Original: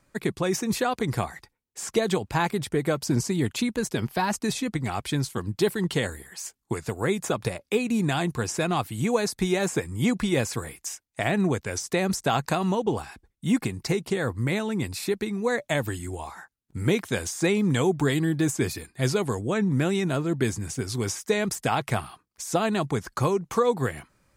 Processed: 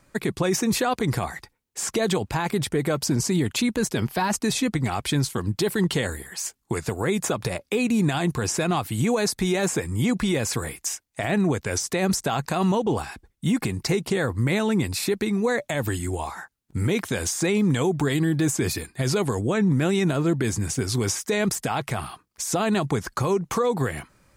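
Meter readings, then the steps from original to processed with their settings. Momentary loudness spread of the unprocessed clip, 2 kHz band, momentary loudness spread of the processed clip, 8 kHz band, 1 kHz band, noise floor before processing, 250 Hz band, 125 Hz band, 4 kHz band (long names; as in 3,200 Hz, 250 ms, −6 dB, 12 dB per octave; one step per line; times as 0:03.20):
9 LU, +1.5 dB, 8 LU, +5.0 dB, +1.0 dB, −74 dBFS, +2.5 dB, +2.5 dB, +3.0 dB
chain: brickwall limiter −20.5 dBFS, peak gain reduction 10 dB
level +6 dB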